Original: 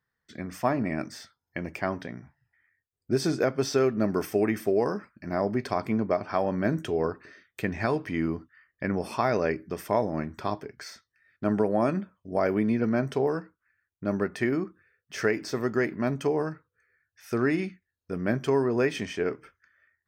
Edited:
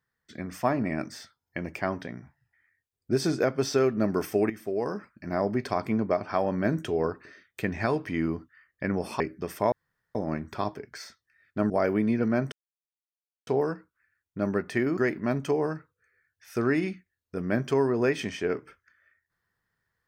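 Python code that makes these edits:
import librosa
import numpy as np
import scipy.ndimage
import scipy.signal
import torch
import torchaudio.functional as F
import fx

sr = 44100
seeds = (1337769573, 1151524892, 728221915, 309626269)

y = fx.edit(x, sr, fx.fade_in_from(start_s=4.5, length_s=0.63, floor_db=-12.5),
    fx.cut(start_s=9.2, length_s=0.29),
    fx.insert_room_tone(at_s=10.01, length_s=0.43),
    fx.cut(start_s=11.56, length_s=0.75),
    fx.insert_silence(at_s=13.13, length_s=0.95),
    fx.cut(start_s=14.63, length_s=1.1), tone=tone)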